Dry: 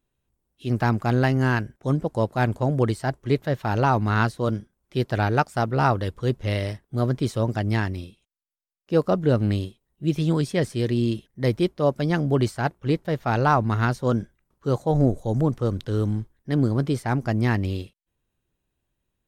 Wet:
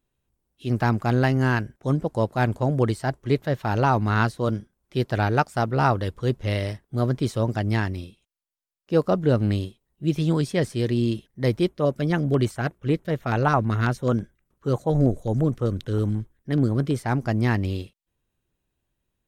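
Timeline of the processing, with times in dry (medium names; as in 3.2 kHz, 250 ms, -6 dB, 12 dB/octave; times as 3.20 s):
11.69–16.99 s: LFO notch square 9.2 Hz 860–4700 Hz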